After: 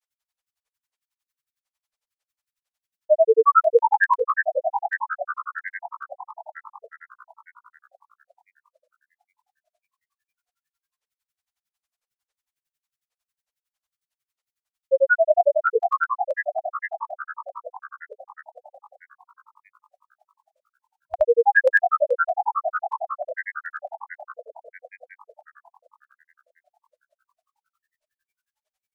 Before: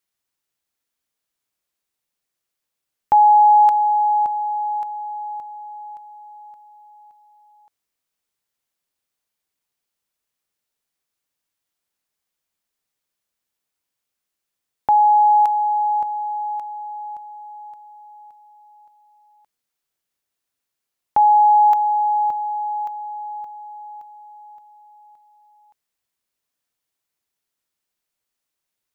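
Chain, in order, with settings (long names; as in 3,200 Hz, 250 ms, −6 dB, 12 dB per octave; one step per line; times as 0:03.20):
echo with shifted repeats 414 ms, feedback 61%, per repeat +50 Hz, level −7 dB
brick-wall band-stop 110–760 Hz
granular cloud 67 ms, grains 11 per second, pitch spread up and down by 12 semitones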